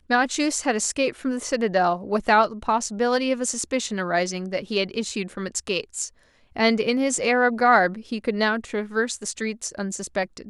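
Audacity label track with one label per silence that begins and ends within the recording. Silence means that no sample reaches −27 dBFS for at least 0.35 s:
6.070000	6.570000	silence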